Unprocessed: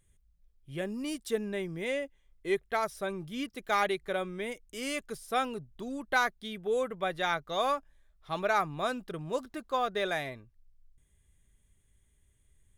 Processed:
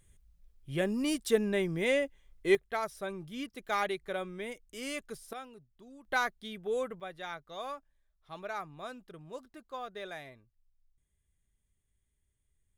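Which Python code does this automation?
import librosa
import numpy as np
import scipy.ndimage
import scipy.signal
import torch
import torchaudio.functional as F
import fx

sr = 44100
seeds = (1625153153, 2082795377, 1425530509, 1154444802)

y = fx.gain(x, sr, db=fx.steps((0.0, 4.5), (2.55, -3.5), (5.33, -15.0), (6.05, -3.0), (7.0, -11.0)))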